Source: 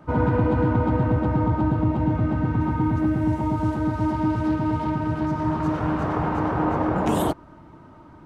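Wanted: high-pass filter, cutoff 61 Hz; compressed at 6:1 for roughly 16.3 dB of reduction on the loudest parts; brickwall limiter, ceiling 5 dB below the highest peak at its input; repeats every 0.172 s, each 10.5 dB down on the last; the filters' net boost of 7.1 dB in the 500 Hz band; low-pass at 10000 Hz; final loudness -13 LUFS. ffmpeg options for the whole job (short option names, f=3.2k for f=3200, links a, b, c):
-af "highpass=61,lowpass=10k,equalizer=f=500:t=o:g=8.5,acompressor=threshold=-32dB:ratio=6,alimiter=level_in=2.5dB:limit=-24dB:level=0:latency=1,volume=-2.5dB,aecho=1:1:172|344|516:0.299|0.0896|0.0269,volume=23dB"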